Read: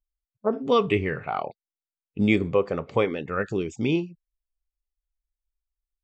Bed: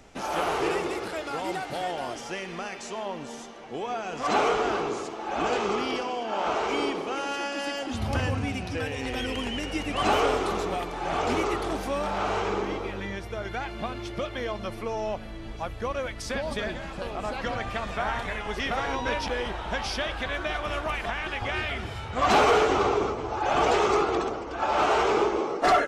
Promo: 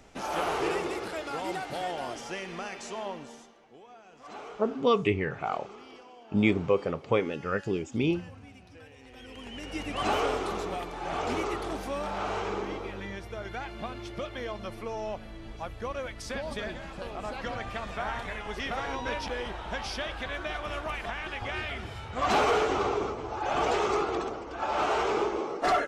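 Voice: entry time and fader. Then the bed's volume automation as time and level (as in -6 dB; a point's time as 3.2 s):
4.15 s, -3.0 dB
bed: 3.08 s -2.5 dB
3.84 s -20 dB
9.09 s -20 dB
9.8 s -4.5 dB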